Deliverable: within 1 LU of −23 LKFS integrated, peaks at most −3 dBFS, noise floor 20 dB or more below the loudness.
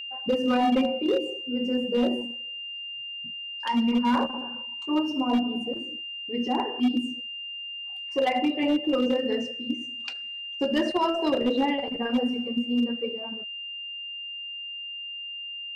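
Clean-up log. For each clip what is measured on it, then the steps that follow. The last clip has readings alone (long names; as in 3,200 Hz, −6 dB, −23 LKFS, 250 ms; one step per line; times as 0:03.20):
share of clipped samples 0.9%; peaks flattened at −17.5 dBFS; interfering tone 2,800 Hz; level of the tone −34 dBFS; integrated loudness −27.5 LKFS; sample peak −17.5 dBFS; target loudness −23.0 LKFS
→ clipped peaks rebuilt −17.5 dBFS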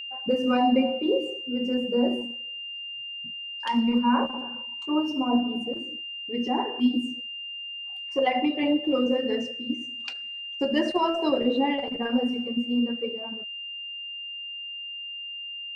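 share of clipped samples 0.0%; interfering tone 2,800 Hz; level of the tone −34 dBFS
→ notch filter 2,800 Hz, Q 30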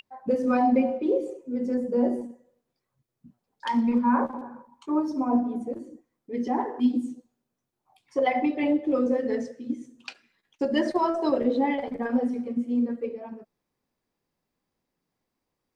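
interfering tone none found; integrated loudness −26.5 LKFS; sample peak −11.5 dBFS; target loudness −23.0 LKFS
→ level +3.5 dB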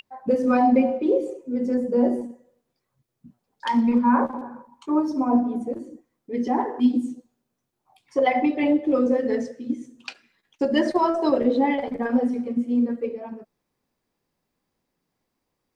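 integrated loudness −23.0 LKFS; sample peak −8.0 dBFS; background noise floor −79 dBFS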